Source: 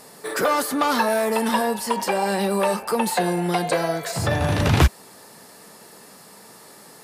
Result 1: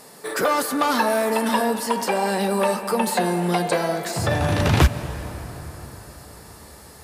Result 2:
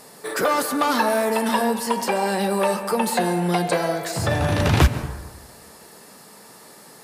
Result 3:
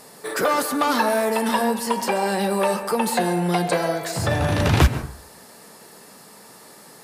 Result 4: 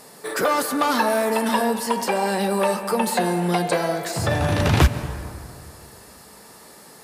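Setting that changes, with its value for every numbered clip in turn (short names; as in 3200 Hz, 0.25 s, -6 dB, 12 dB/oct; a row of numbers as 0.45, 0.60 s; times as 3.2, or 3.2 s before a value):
plate-style reverb, RT60: 5.1, 1.2, 0.53, 2.4 s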